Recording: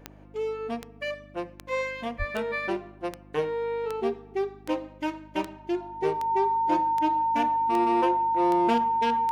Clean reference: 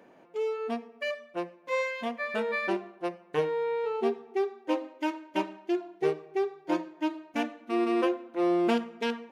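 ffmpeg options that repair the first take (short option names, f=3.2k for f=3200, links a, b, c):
-filter_complex "[0:a]adeclick=t=4,bandreject=f=50.8:t=h:w=4,bandreject=f=101.6:t=h:w=4,bandreject=f=152.4:t=h:w=4,bandreject=f=203.2:t=h:w=4,bandreject=f=254:t=h:w=4,bandreject=f=304.8:t=h:w=4,bandreject=f=910:w=30,asplit=3[a][b][c];[a]afade=t=out:st=2.18:d=0.02[d];[b]highpass=f=140:w=0.5412,highpass=f=140:w=1.3066,afade=t=in:st=2.18:d=0.02,afade=t=out:st=2.3:d=0.02[e];[c]afade=t=in:st=2.3:d=0.02[f];[d][e][f]amix=inputs=3:normalize=0"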